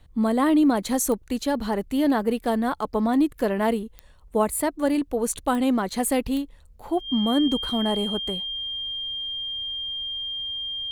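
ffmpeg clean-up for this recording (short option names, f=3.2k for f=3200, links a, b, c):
-af "adeclick=t=4,bandreject=f=3.2k:w=30"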